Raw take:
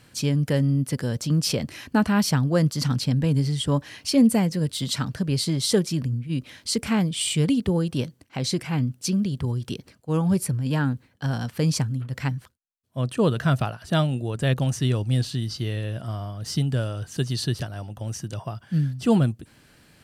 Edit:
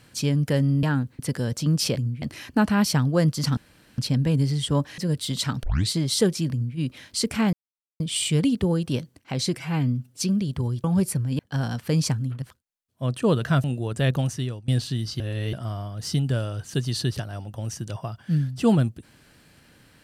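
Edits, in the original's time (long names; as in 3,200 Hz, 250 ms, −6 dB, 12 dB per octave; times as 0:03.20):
0:02.95: splice in room tone 0.41 s
0:03.95–0:04.50: remove
0:05.15: tape start 0.26 s
0:06.03–0:06.29: duplicate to 0:01.60
0:07.05: splice in silence 0.47 s
0:08.62–0:09.04: time-stretch 1.5×
0:09.68–0:10.18: remove
0:10.73–0:11.09: move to 0:00.83
0:12.12–0:12.37: remove
0:13.59–0:14.07: remove
0:14.61–0:15.11: fade out, to −22.5 dB
0:15.63–0:15.96: reverse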